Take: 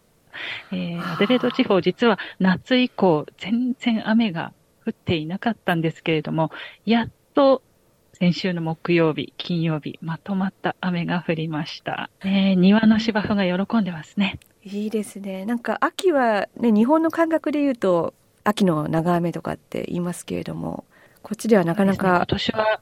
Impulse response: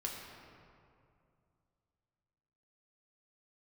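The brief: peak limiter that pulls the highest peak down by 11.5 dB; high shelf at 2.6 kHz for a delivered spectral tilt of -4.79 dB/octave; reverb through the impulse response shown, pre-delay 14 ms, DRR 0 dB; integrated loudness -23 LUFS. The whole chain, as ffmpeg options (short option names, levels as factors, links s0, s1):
-filter_complex "[0:a]highshelf=f=2600:g=4.5,alimiter=limit=0.2:level=0:latency=1,asplit=2[s0][s1];[1:a]atrim=start_sample=2205,adelay=14[s2];[s1][s2]afir=irnorm=-1:irlink=0,volume=0.891[s3];[s0][s3]amix=inputs=2:normalize=0,volume=0.944"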